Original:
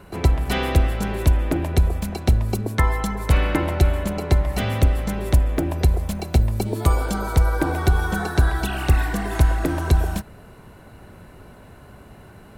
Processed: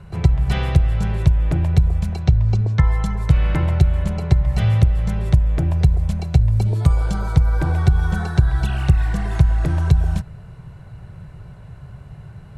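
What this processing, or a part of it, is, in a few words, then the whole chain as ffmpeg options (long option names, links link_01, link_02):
jukebox: -filter_complex "[0:a]asettb=1/sr,asplit=3[link_01][link_02][link_03];[link_01]atrim=end=2.224[link_04];[link_02]atrim=start=2.22:end=2.87,asetpts=PTS-STARTPTS,afade=type=in:duration=0.004:curve=qsin,afade=type=out:start_time=0.646:duration=0.004:curve=qsin,lowpass=frequency=6700:width=0.5412,lowpass=frequency=6700:width=1.3066[link_05];[link_03]atrim=start=2.866[link_06];[link_04][link_05]acrossfade=duration=0.004:curve1=hsin:curve2=qsin[link_07];[link_07][link_06]acrossfade=duration=0.004:curve1=qsin:curve2=hsin,lowpass=8000,lowshelf=frequency=190:width_type=q:width=3:gain=9,acompressor=threshold=-7dB:ratio=4,volume=-3dB"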